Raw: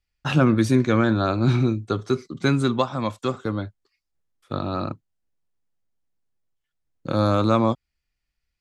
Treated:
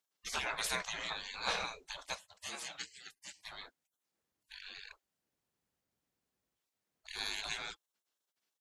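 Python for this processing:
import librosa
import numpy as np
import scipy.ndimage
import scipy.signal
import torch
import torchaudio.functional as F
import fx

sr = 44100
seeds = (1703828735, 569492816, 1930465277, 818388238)

y = fx.highpass(x, sr, hz=fx.line((2.14, 280.0), (3.43, 990.0)), slope=6, at=(2.14, 3.43), fade=0.02)
y = fx.spec_gate(y, sr, threshold_db=-30, keep='weak')
y = y * 10.0 ** (3.5 / 20.0)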